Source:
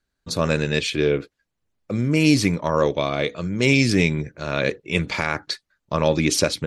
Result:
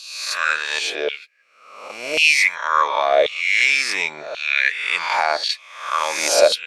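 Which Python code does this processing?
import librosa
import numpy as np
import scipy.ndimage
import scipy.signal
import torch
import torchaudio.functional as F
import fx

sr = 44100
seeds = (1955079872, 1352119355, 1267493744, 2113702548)

y = fx.spec_swells(x, sr, rise_s=0.98)
y = fx.filter_lfo_highpass(y, sr, shape='saw_down', hz=0.92, low_hz=570.0, high_hz=3000.0, q=4.7)
y = fx.low_shelf(y, sr, hz=420.0, db=-6.5, at=(0.59, 2.19))
y = F.gain(torch.from_numpy(y), -1.5).numpy()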